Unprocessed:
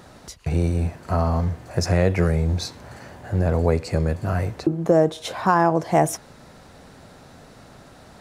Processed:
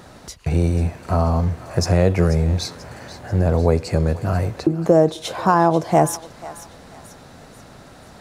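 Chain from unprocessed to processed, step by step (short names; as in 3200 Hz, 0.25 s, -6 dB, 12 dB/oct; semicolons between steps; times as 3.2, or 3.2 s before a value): dynamic EQ 1900 Hz, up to -5 dB, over -39 dBFS, Q 1.6; on a send: thinning echo 0.488 s, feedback 49%, high-pass 1100 Hz, level -13.5 dB; on the sum: gain +3 dB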